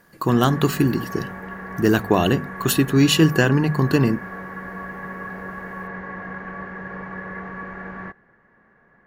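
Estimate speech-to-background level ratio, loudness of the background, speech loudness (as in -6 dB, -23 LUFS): 14.0 dB, -33.5 LUFS, -19.5 LUFS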